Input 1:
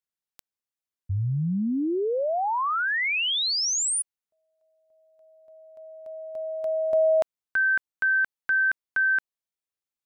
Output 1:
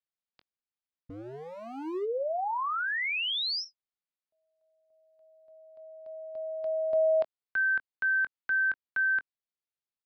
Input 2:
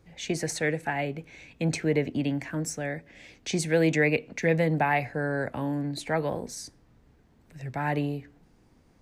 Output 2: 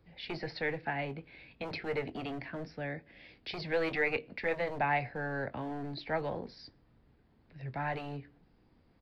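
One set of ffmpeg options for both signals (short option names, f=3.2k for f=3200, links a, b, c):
-filter_complex "[0:a]aresample=11025,aresample=44100,acrossover=split=370[a][b];[a]aeval=exprs='0.0266*(abs(mod(val(0)/0.0266+3,4)-2)-1)':c=same[c];[c][b]amix=inputs=2:normalize=0,asplit=2[d][e];[e]adelay=22,volume=-14dB[f];[d][f]amix=inputs=2:normalize=0,volume=-5.5dB"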